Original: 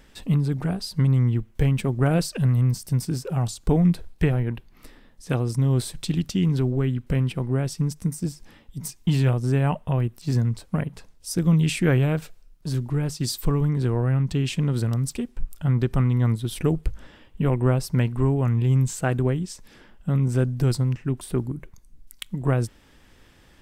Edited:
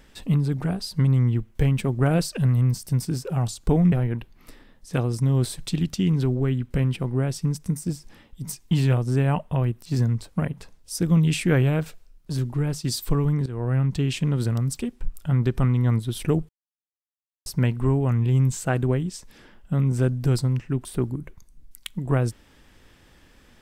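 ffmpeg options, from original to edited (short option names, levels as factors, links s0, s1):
-filter_complex "[0:a]asplit=5[s0][s1][s2][s3][s4];[s0]atrim=end=3.922[s5];[s1]atrim=start=4.278:end=13.82,asetpts=PTS-STARTPTS,afade=t=out:st=9.538:d=0.004:c=hsin:silence=0.158489[s6];[s2]atrim=start=13.82:end=16.85,asetpts=PTS-STARTPTS,afade=t=in:d=0.29:silence=0.158489,afade=t=out:st=3.026:d=0.004:c=hsin[s7];[s3]atrim=start=16.85:end=17.82,asetpts=PTS-STARTPTS,volume=0[s8];[s4]atrim=start=17.82,asetpts=PTS-STARTPTS,afade=t=in:d=0.004:c=hsin[s9];[s6][s7][s8][s9]concat=n=4:v=0:a=1[s10];[s5][s10]acrossfade=d=0.004:c1=hsin:c2=hsin"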